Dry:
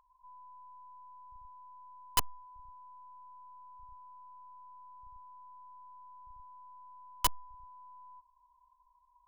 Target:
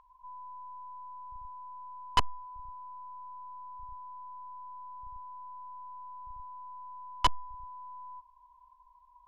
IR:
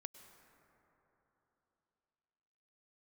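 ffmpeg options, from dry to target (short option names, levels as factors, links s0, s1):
-filter_complex "[0:a]asplit=2[s0][s1];[s1]asoftclip=type=tanh:threshold=0.0299,volume=0.631[s2];[s0][s2]amix=inputs=2:normalize=0,lowpass=3700,volume=1.5"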